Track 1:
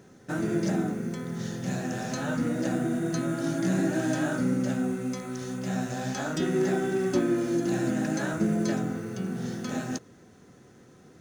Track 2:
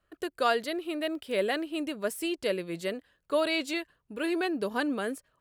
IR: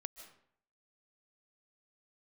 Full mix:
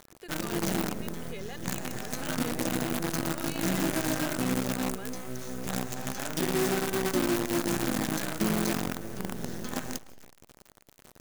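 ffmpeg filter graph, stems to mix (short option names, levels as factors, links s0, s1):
-filter_complex "[0:a]acrusher=bits=5:dc=4:mix=0:aa=0.000001,crystalizer=i=0.5:c=0,volume=0.841,asplit=2[s0][s1];[s1]volume=0.335[s2];[1:a]alimiter=limit=0.075:level=0:latency=1,highpass=470,aecho=1:1:2.4:0.65,volume=0.266,asplit=2[s3][s4];[s4]apad=whole_len=494324[s5];[s0][s5]sidechaincompress=threshold=0.00447:ratio=8:attack=16:release=126[s6];[2:a]atrim=start_sample=2205[s7];[s2][s7]afir=irnorm=-1:irlink=0[s8];[s6][s3][s8]amix=inputs=3:normalize=0,alimiter=limit=0.133:level=0:latency=1:release=70"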